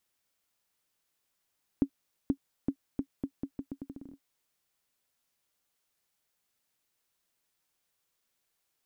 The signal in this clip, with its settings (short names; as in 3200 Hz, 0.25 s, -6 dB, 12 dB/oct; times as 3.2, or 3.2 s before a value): bouncing ball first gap 0.48 s, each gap 0.8, 275 Hz, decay 75 ms -14.5 dBFS